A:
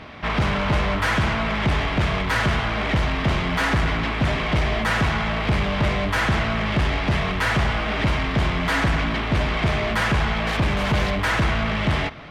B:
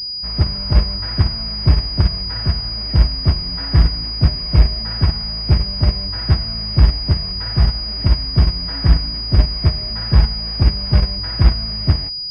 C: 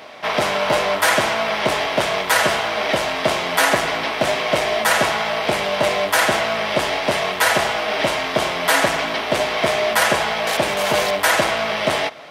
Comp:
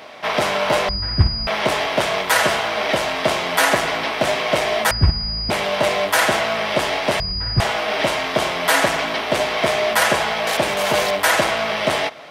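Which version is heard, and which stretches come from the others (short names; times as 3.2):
C
0.89–1.47 from B
4.91–5.5 from B
7.2–7.6 from B
not used: A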